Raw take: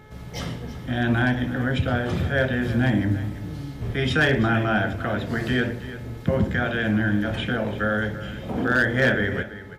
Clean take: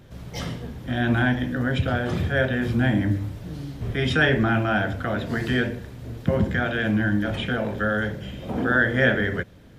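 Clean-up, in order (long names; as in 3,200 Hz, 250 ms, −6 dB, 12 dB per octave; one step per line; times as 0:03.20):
clipped peaks rebuilt −12 dBFS
hum removal 428.4 Hz, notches 5
echo removal 334 ms −14.5 dB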